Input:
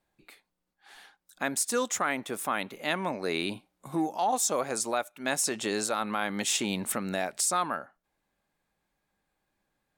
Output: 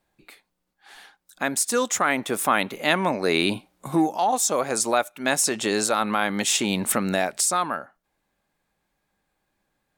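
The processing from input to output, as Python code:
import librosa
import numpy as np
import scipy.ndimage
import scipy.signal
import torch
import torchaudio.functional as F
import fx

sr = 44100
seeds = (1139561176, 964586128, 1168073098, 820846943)

y = fx.rider(x, sr, range_db=4, speed_s=0.5)
y = y * 10.0 ** (7.0 / 20.0)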